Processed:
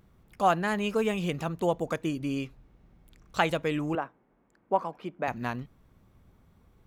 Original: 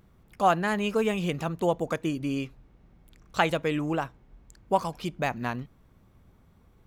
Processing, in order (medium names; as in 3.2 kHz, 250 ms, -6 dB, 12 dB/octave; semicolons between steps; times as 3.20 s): 3.95–5.28 s: three-band isolator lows -23 dB, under 190 Hz, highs -19 dB, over 2.3 kHz; trim -1.5 dB